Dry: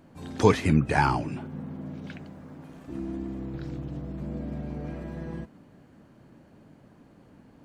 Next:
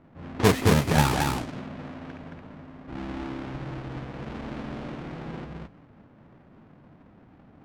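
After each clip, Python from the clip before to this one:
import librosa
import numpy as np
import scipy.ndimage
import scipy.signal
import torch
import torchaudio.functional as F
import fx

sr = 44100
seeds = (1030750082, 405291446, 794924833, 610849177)

y = fx.halfwave_hold(x, sr)
y = fx.env_lowpass(y, sr, base_hz=1800.0, full_db=-15.0)
y = y + 10.0 ** (-3.0 / 20.0) * np.pad(y, (int(221 * sr / 1000.0), 0))[:len(y)]
y = F.gain(torch.from_numpy(y), -5.0).numpy()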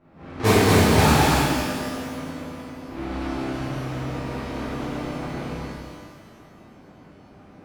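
y = fx.rev_shimmer(x, sr, seeds[0], rt60_s=1.6, semitones=12, shimmer_db=-8, drr_db=-11.0)
y = F.gain(torch.from_numpy(y), -6.0).numpy()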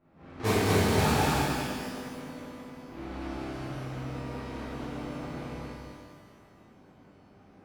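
y = x + 10.0 ** (-7.0 / 20.0) * np.pad(x, (int(200 * sr / 1000.0), 0))[:len(x)]
y = F.gain(torch.from_numpy(y), -9.0).numpy()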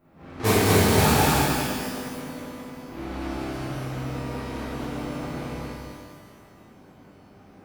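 y = fx.high_shelf(x, sr, hz=9900.0, db=10.5)
y = F.gain(torch.from_numpy(y), 5.5).numpy()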